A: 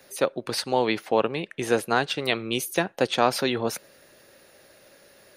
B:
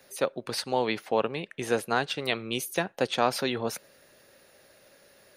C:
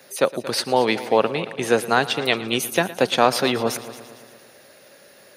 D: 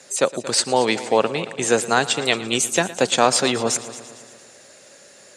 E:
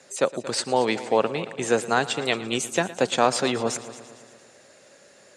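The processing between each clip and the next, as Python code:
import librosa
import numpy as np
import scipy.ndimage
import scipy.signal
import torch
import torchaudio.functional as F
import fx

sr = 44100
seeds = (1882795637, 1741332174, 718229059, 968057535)

y1 = fx.peak_eq(x, sr, hz=330.0, db=-3.0, octaves=0.29)
y1 = y1 * 10.0 ** (-3.5 / 20.0)
y2 = scipy.signal.sosfilt(scipy.signal.butter(2, 110.0, 'highpass', fs=sr, output='sos'), y1)
y2 = fx.echo_heads(y2, sr, ms=114, heads='first and second', feedback_pct=51, wet_db=-18.0)
y2 = y2 * 10.0 ** (8.0 / 20.0)
y3 = fx.lowpass_res(y2, sr, hz=7600.0, q=14.0)
y4 = fx.high_shelf(y3, sr, hz=3800.0, db=-7.5)
y4 = y4 * 10.0 ** (-3.0 / 20.0)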